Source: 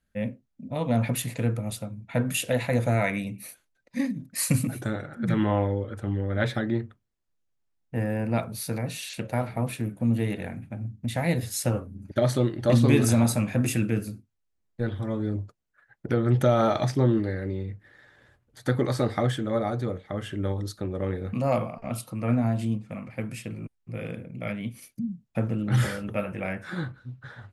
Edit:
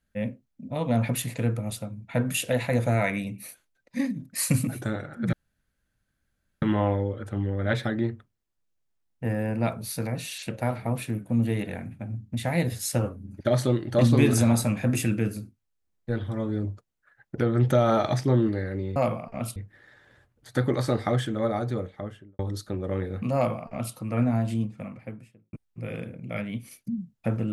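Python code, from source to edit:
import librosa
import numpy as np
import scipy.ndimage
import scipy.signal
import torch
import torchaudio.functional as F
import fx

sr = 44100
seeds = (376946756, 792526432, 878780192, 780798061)

y = fx.studio_fade_out(x, sr, start_s=19.94, length_s=0.56)
y = fx.studio_fade_out(y, sr, start_s=22.79, length_s=0.85)
y = fx.edit(y, sr, fx.insert_room_tone(at_s=5.33, length_s=1.29),
    fx.duplicate(start_s=21.46, length_s=0.6, to_s=17.67), tone=tone)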